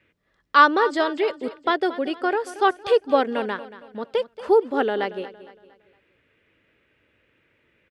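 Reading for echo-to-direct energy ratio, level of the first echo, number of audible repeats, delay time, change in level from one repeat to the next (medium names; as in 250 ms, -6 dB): -14.5 dB, -15.5 dB, 3, 230 ms, -8.0 dB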